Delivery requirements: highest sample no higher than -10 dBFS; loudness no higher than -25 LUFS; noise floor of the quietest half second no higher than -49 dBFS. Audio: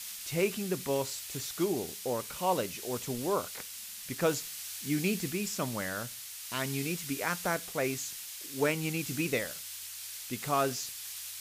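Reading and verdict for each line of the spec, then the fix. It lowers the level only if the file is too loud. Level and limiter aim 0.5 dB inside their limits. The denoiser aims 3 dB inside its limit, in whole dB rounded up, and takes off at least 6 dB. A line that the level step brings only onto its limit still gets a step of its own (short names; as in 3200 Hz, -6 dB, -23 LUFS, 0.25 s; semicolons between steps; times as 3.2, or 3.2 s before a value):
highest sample -15.5 dBFS: OK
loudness -33.5 LUFS: OK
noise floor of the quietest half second -44 dBFS: fail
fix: denoiser 8 dB, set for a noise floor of -44 dBFS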